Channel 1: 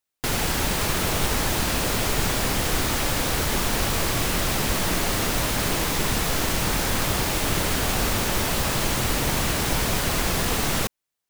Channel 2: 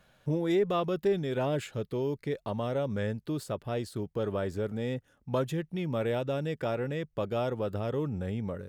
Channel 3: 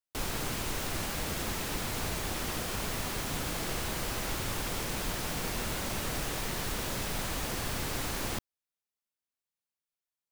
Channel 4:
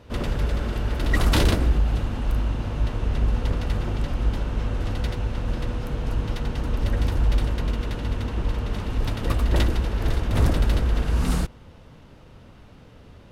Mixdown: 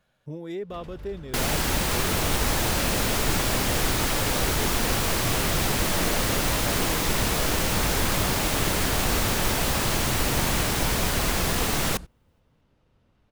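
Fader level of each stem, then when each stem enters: -1.0, -7.0, 0.0, -18.0 dB; 1.10, 0.00, 2.30, 0.60 s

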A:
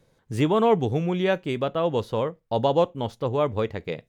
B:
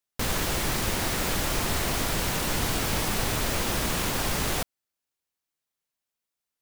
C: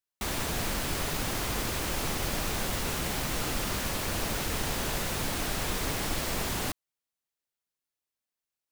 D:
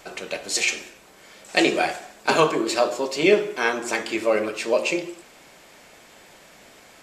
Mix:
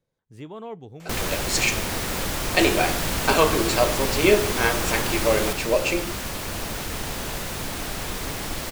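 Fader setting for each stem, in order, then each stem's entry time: -17.0, 0.0, +1.0, -0.5 dB; 0.00, 0.90, 2.40, 1.00 s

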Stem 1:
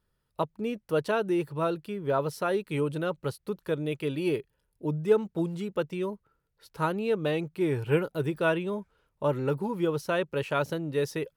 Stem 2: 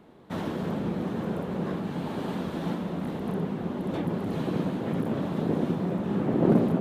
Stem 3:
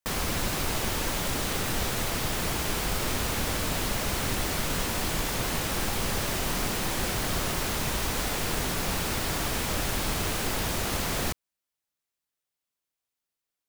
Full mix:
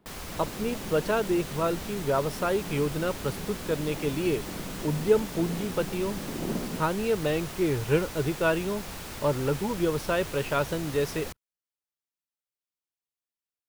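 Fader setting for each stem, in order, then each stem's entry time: +1.0, -11.0, -10.0 dB; 0.00, 0.00, 0.00 s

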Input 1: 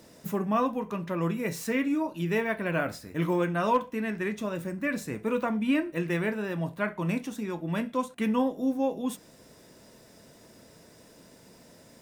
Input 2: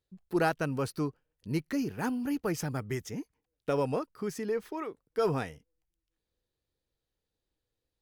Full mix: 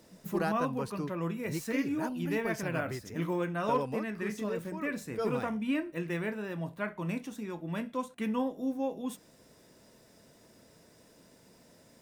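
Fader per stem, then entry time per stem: -5.5, -5.5 dB; 0.00, 0.00 s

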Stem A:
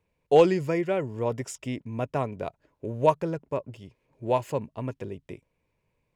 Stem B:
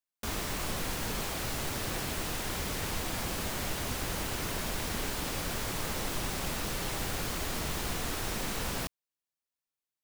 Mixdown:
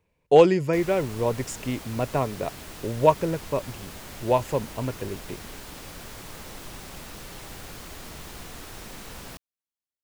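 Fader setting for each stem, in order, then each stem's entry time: +3.0, -6.5 dB; 0.00, 0.50 s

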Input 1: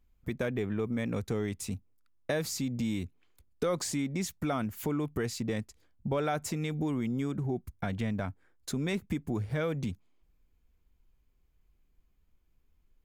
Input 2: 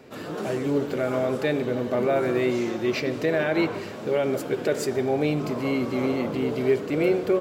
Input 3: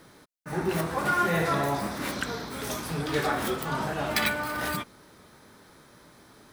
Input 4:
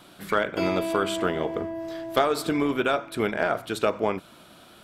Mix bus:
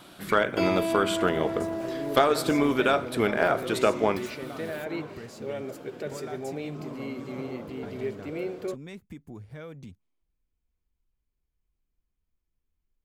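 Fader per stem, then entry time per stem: -10.5, -11.0, -19.5, +1.0 dB; 0.00, 1.35, 0.00, 0.00 s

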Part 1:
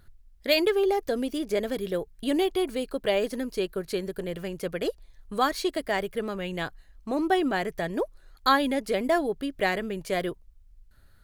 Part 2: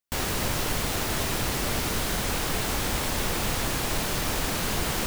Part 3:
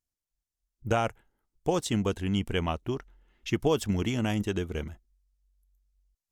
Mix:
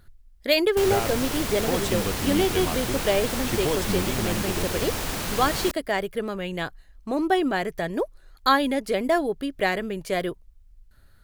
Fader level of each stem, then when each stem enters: +2.0, -1.5, -1.5 dB; 0.00, 0.65, 0.00 s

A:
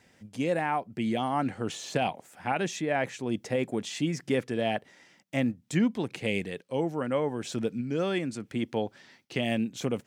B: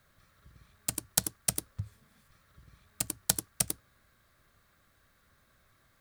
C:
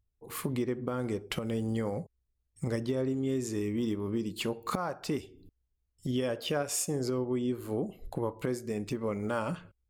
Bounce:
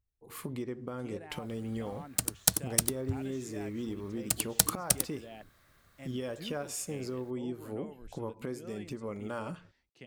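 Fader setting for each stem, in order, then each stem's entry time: -20.0, +2.5, -6.0 dB; 0.65, 1.30, 0.00 s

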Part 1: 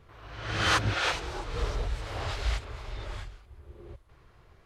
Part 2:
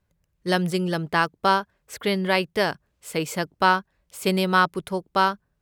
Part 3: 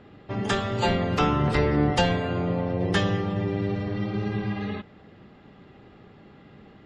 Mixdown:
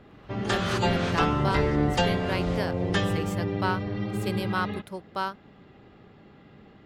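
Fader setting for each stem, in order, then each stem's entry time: -7.5, -10.0, -2.0 dB; 0.00, 0.00, 0.00 s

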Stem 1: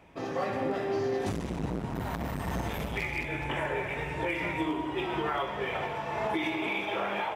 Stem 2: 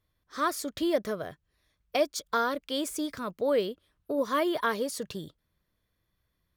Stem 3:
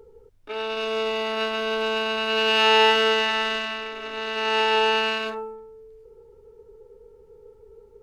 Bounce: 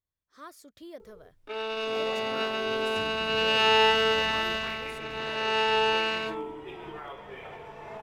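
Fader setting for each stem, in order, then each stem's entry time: -10.5, -17.5, -4.0 dB; 1.70, 0.00, 1.00 s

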